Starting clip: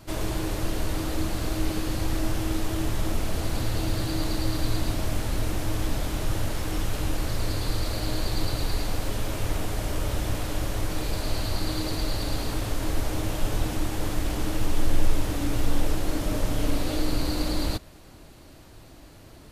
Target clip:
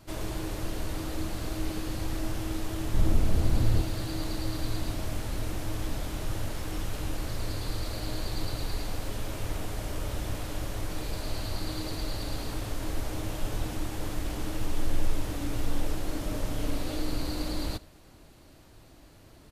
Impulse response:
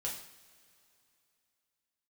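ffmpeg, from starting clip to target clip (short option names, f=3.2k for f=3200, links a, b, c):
-filter_complex "[0:a]asettb=1/sr,asplit=3[a][b][c];[a]atrim=end=2.944[d];[b]atrim=start=2.94:end=3.82,asetpts=PTS-STARTPTS,afade=t=in:d=0.004:c=qsin,afade=t=out:st=0.876:d=0.004:c=qsin,lowshelf=f=380:g=10[e];[c]atrim=start=3.816[f];[d][e]acrossfade=d=0.004:c1=hsin:c2=qsin[g];[g][f]acrossfade=d=0.004:c1=qsin:c2=hsin,aecho=1:1:82:0.0708,volume=-5.5dB"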